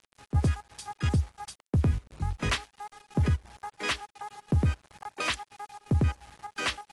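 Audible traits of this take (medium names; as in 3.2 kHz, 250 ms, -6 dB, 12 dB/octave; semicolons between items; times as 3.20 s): a quantiser's noise floor 8-bit, dither none; chopped level 2.9 Hz, depth 65%, duty 75%; AAC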